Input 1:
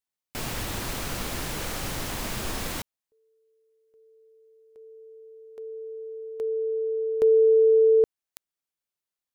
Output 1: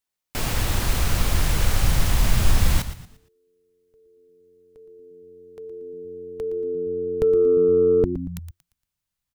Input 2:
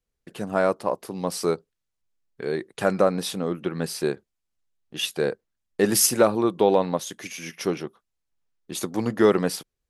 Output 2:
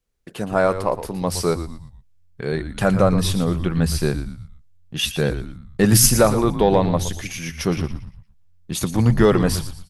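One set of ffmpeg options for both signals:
ffmpeg -i in.wav -filter_complex "[0:a]asplit=5[link_01][link_02][link_03][link_04][link_05];[link_02]adelay=116,afreqshift=-90,volume=-12dB[link_06];[link_03]adelay=232,afreqshift=-180,volume=-21.1dB[link_07];[link_04]adelay=348,afreqshift=-270,volume=-30.2dB[link_08];[link_05]adelay=464,afreqshift=-360,volume=-39.4dB[link_09];[link_01][link_06][link_07][link_08][link_09]amix=inputs=5:normalize=0,acontrast=22,asubboost=boost=8.5:cutoff=130" out.wav

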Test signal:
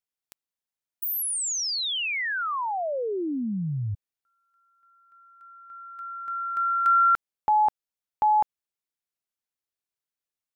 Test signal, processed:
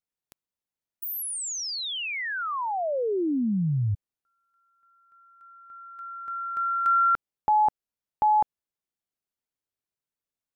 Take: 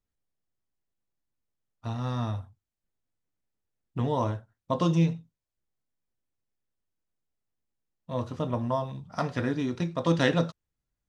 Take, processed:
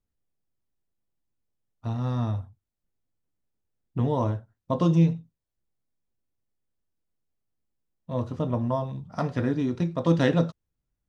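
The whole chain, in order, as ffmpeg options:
ffmpeg -i in.wav -af "tiltshelf=frequency=810:gain=4" out.wav

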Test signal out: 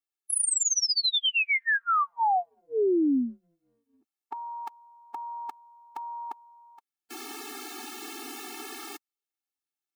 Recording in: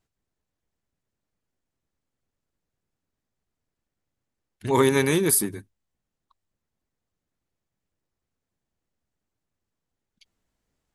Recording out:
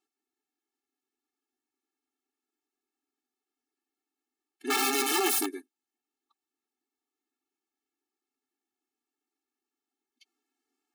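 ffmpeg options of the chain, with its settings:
ffmpeg -i in.wav -af "aeval=exprs='(mod(7.94*val(0)+1,2)-1)/7.94':channel_layout=same,afftfilt=real='re*eq(mod(floor(b*sr/1024/230),2),1)':imag='im*eq(mod(floor(b*sr/1024/230),2),1)':win_size=1024:overlap=0.75" out.wav

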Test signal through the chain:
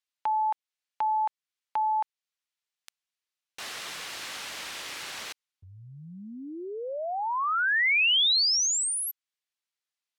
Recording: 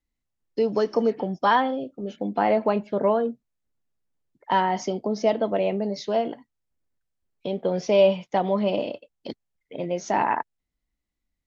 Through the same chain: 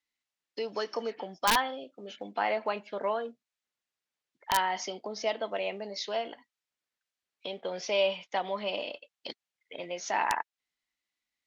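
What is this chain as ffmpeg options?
ffmpeg -i in.wav -filter_complex "[0:a]asplit=2[link_01][link_02];[link_02]acompressor=threshold=-34dB:ratio=20,volume=-1dB[link_03];[link_01][link_03]amix=inputs=2:normalize=0,bandpass=frequency=3100:width_type=q:width=0.63:csg=0,aeval=exprs='(mod(5.31*val(0)+1,2)-1)/5.31':channel_layout=same" out.wav

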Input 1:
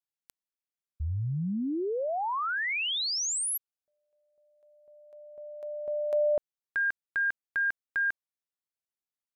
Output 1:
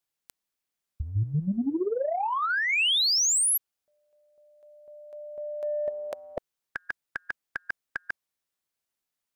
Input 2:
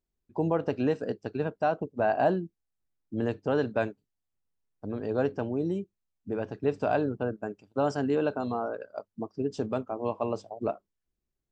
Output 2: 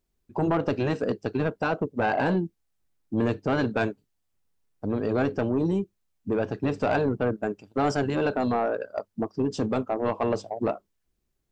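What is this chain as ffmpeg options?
ffmpeg -i in.wav -af "afftfilt=real='re*lt(hypot(re,im),0.398)':imag='im*lt(hypot(re,im),0.398)':win_size=1024:overlap=0.75,asoftclip=type=tanh:threshold=-24.5dB,volume=8dB" out.wav

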